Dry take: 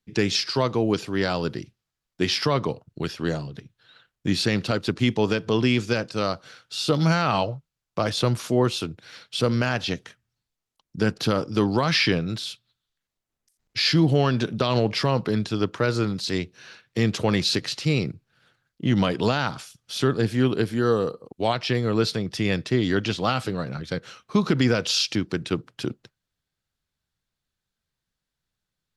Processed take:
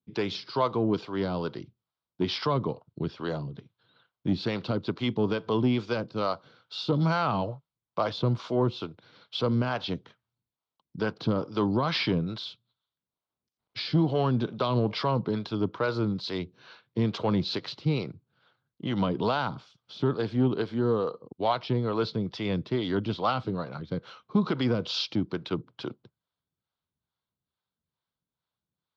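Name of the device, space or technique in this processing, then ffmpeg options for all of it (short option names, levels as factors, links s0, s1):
guitar amplifier with harmonic tremolo: -filter_complex "[0:a]acrossover=split=440[s0][s1];[s0]aeval=exprs='val(0)*(1-0.7/2+0.7/2*cos(2*PI*2.3*n/s))':c=same[s2];[s1]aeval=exprs='val(0)*(1-0.7/2-0.7/2*cos(2*PI*2.3*n/s))':c=same[s3];[s2][s3]amix=inputs=2:normalize=0,asoftclip=type=tanh:threshold=0.2,highpass=87,equalizer=f=1000:t=q:w=4:g=5,equalizer=f=1800:t=q:w=4:g=-10,equalizer=f=2600:t=q:w=4:g=-7,lowpass=f=4000:w=0.5412,lowpass=f=4000:w=1.3066"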